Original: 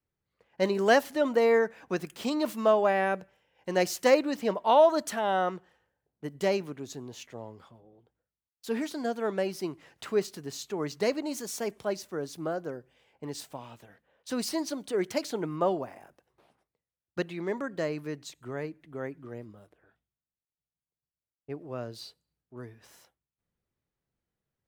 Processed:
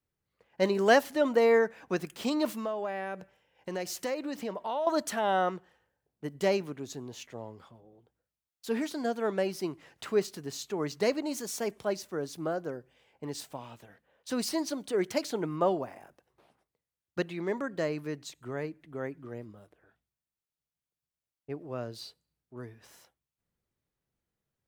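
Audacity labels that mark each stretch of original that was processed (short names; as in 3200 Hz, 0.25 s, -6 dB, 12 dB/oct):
2.530000	4.870000	compressor 3:1, threshold -33 dBFS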